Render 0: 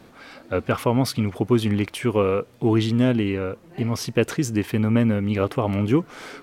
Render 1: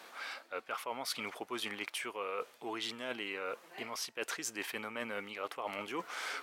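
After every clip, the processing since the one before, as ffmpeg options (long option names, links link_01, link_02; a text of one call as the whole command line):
ffmpeg -i in.wav -af "highpass=840,areverse,acompressor=threshold=-38dB:ratio=10,areverse,volume=2.5dB" out.wav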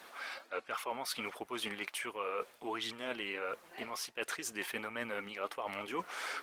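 ffmpeg -i in.wav -af "flanger=delay=0.5:depth=5.1:regen=61:speed=1.4:shape=sinusoidal,volume=5.5dB" -ar 48000 -c:a libopus -b:a 24k out.opus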